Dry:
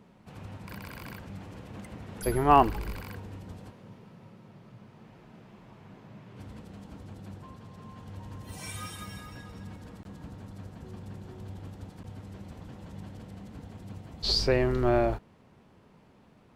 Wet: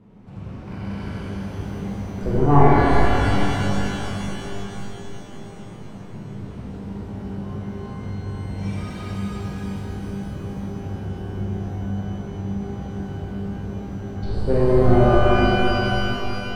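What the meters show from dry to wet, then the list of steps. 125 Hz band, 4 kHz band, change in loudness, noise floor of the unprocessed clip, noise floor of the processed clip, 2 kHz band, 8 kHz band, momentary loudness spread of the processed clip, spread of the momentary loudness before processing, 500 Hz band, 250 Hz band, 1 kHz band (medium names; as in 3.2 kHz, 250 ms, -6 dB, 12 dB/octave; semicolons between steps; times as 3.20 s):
+14.5 dB, +2.5 dB, +6.0 dB, -59 dBFS, -37 dBFS, +13.0 dB, +2.5 dB, 19 LU, 21 LU, +9.5 dB, +13.0 dB, +6.5 dB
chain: one-sided wavefolder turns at -17.5 dBFS; tilt EQ -2.5 dB/octave; low-pass that closes with the level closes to 1.2 kHz, closed at -24.5 dBFS; pitch-shifted reverb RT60 3.8 s, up +12 st, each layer -8 dB, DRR -9 dB; trim -3 dB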